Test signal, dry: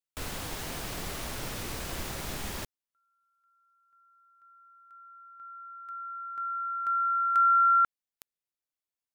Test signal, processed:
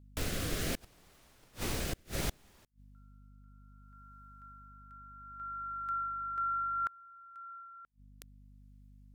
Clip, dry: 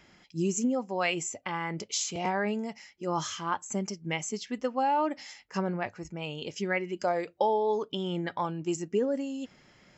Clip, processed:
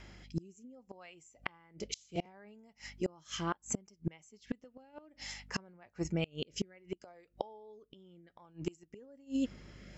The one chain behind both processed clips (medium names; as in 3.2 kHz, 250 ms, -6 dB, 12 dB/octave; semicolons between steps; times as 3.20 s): rotary cabinet horn 0.65 Hz; hum 50 Hz, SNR 28 dB; inverted gate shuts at -28 dBFS, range -31 dB; trim +6 dB